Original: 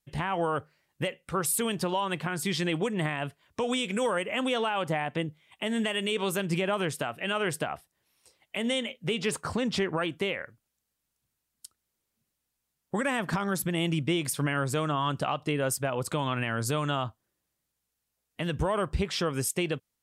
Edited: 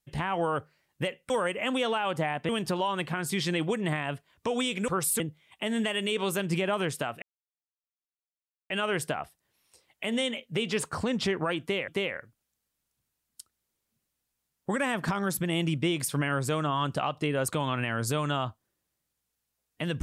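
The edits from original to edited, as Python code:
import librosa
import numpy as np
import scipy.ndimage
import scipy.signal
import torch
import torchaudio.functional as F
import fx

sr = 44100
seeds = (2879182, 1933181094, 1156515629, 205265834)

y = fx.edit(x, sr, fx.swap(start_s=1.3, length_s=0.32, other_s=4.01, other_length_s=1.19),
    fx.insert_silence(at_s=7.22, length_s=1.48),
    fx.repeat(start_s=10.13, length_s=0.27, count=2),
    fx.cut(start_s=15.73, length_s=0.34), tone=tone)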